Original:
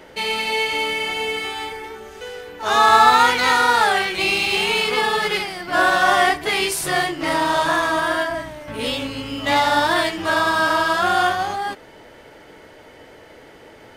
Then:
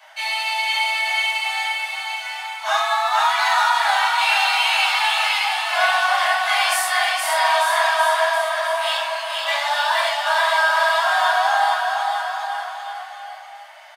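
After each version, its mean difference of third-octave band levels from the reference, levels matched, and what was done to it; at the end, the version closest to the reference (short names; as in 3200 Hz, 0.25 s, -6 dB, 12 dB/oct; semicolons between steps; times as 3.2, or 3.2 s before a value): 13.0 dB: steep high-pass 640 Hz 96 dB/oct; compressor 5:1, threshold -18 dBFS, peak gain reduction 9.5 dB; bouncing-ball echo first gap 0.47 s, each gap 0.9×, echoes 5; shoebox room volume 440 m³, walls furnished, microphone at 5.5 m; gain -6 dB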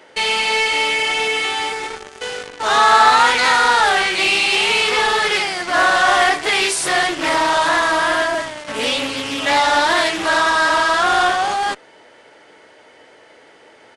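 4.5 dB: HPF 510 Hz 6 dB/oct; in parallel at -9 dB: fuzz box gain 43 dB, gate -34 dBFS; on the sum: downsampling 22050 Hz; Doppler distortion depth 0.21 ms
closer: second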